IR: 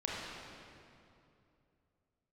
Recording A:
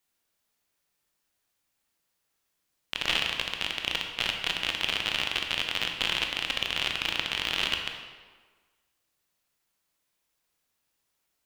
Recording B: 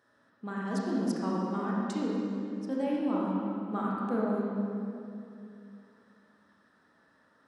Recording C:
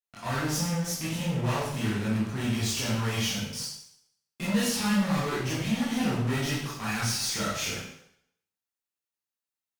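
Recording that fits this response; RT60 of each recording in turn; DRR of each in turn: B; 1.5, 2.7, 0.70 s; 2.5, -5.0, -9.5 dB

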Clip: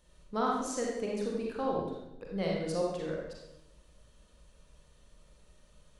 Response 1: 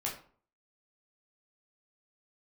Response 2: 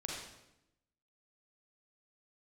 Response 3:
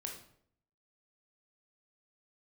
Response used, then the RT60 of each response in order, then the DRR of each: 2; 0.45, 0.85, 0.65 s; -4.0, -3.0, 1.0 dB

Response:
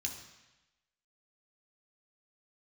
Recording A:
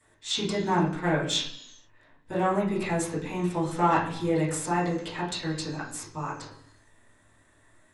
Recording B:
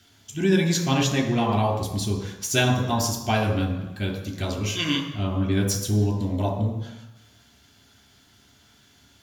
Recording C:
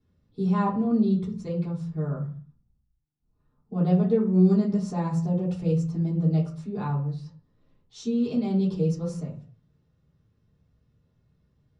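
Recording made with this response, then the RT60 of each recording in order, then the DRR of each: B; 0.70, 1.0, 0.45 s; -11.5, 0.5, -11.0 dB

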